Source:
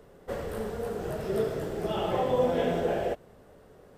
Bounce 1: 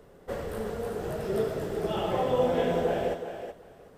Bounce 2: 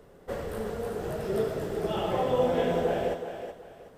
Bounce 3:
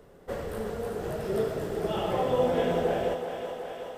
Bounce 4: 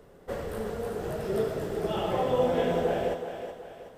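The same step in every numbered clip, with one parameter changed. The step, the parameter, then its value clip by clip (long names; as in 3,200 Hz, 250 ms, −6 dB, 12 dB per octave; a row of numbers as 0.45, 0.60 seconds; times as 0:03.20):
feedback echo with a high-pass in the loop, feedback: 17, 30, 77, 45%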